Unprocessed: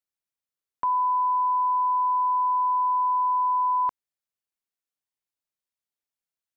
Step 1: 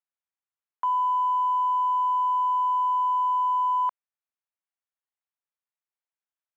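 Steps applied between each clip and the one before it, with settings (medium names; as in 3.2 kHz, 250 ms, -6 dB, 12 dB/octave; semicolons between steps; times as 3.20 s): local Wiener filter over 9 samples; Chebyshev high-pass 830 Hz, order 2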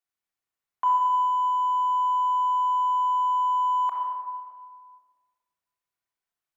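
simulated room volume 2800 m³, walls mixed, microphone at 3.4 m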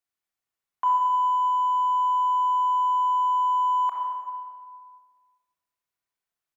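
delay 398 ms -19 dB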